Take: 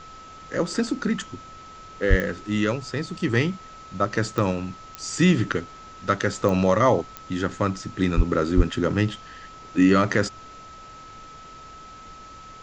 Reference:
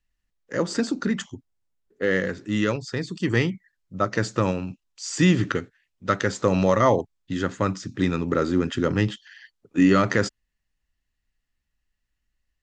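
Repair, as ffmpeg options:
-filter_complex "[0:a]adeclick=t=4,bandreject=f=1300:w=30,asplit=3[s0][s1][s2];[s0]afade=t=out:st=2.09:d=0.02[s3];[s1]highpass=f=140:w=0.5412,highpass=f=140:w=1.3066,afade=t=in:st=2.09:d=0.02,afade=t=out:st=2.21:d=0.02[s4];[s2]afade=t=in:st=2.21:d=0.02[s5];[s3][s4][s5]amix=inputs=3:normalize=0,asplit=3[s6][s7][s8];[s6]afade=t=out:st=8.16:d=0.02[s9];[s7]highpass=f=140:w=0.5412,highpass=f=140:w=1.3066,afade=t=in:st=8.16:d=0.02,afade=t=out:st=8.28:d=0.02[s10];[s8]afade=t=in:st=8.28:d=0.02[s11];[s9][s10][s11]amix=inputs=3:normalize=0,asplit=3[s12][s13][s14];[s12]afade=t=out:st=8.56:d=0.02[s15];[s13]highpass=f=140:w=0.5412,highpass=f=140:w=1.3066,afade=t=in:st=8.56:d=0.02,afade=t=out:st=8.68:d=0.02[s16];[s14]afade=t=in:st=8.68:d=0.02[s17];[s15][s16][s17]amix=inputs=3:normalize=0,afftdn=nr=30:nf=-43"

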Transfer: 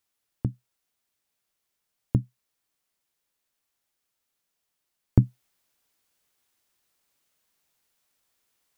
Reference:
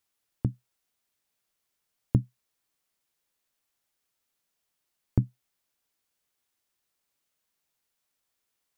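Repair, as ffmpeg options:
-af "asetnsamples=n=441:p=0,asendcmd='5.17 volume volume -6dB',volume=1"

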